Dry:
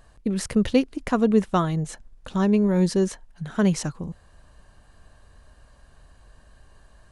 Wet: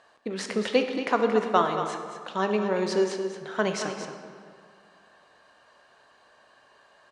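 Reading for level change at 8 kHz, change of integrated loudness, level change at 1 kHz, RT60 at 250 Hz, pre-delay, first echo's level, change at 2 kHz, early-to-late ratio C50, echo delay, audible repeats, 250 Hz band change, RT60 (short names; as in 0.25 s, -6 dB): -4.5 dB, -3.5 dB, +3.5 dB, 2.2 s, 11 ms, -9.5 dB, +3.5 dB, 5.0 dB, 0.227 s, 1, -9.0 dB, 2.1 s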